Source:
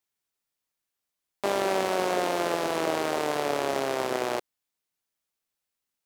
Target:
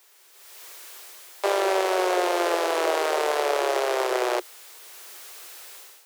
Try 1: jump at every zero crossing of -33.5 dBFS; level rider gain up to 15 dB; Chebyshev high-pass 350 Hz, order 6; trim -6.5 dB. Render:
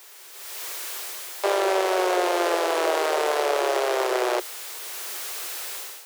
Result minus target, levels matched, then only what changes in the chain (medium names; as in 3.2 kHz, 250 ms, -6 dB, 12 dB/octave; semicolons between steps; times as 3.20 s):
jump at every zero crossing: distortion +9 dB
change: jump at every zero crossing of -43.5 dBFS